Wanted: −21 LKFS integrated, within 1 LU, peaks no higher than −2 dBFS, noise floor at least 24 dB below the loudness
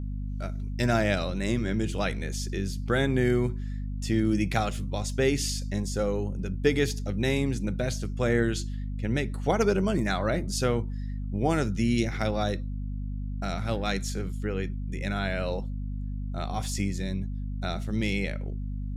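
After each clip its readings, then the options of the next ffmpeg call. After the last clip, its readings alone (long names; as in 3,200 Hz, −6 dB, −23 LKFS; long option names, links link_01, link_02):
mains hum 50 Hz; hum harmonics up to 250 Hz; level of the hum −30 dBFS; integrated loudness −29.0 LKFS; sample peak −10.0 dBFS; target loudness −21.0 LKFS
→ -af "bandreject=frequency=50:width_type=h:width=6,bandreject=frequency=100:width_type=h:width=6,bandreject=frequency=150:width_type=h:width=6,bandreject=frequency=200:width_type=h:width=6,bandreject=frequency=250:width_type=h:width=6"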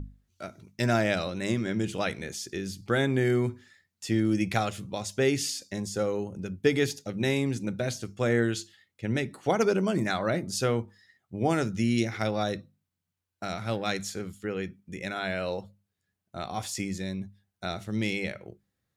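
mains hum none found; integrated loudness −29.5 LKFS; sample peak −11.0 dBFS; target loudness −21.0 LKFS
→ -af "volume=8.5dB"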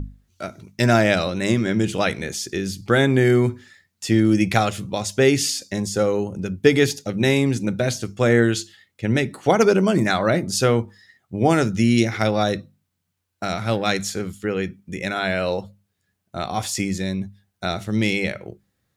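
integrated loudness −21.0 LKFS; sample peak −2.5 dBFS; background noise floor −75 dBFS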